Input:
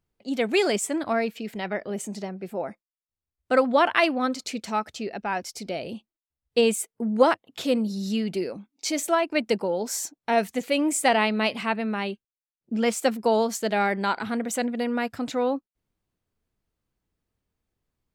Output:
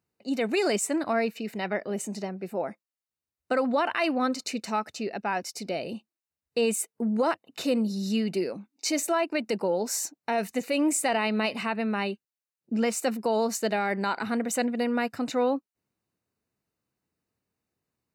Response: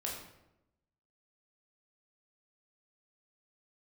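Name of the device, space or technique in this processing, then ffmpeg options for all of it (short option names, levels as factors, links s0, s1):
PA system with an anti-feedback notch: -af "highpass=120,asuperstop=centerf=3300:order=12:qfactor=7.8,alimiter=limit=0.15:level=0:latency=1:release=64"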